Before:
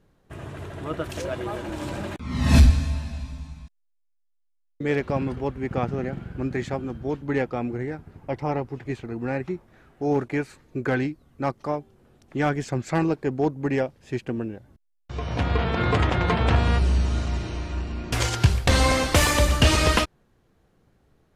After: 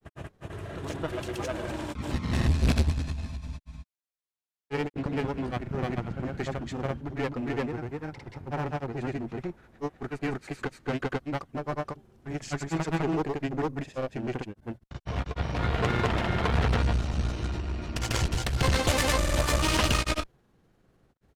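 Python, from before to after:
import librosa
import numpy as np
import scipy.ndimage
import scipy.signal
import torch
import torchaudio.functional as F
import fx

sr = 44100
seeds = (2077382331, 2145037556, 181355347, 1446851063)

y = fx.clip_asym(x, sr, top_db=-30.5, bottom_db=-13.0)
y = fx.granulator(y, sr, seeds[0], grain_ms=100.0, per_s=20.0, spray_ms=287.0, spread_st=0)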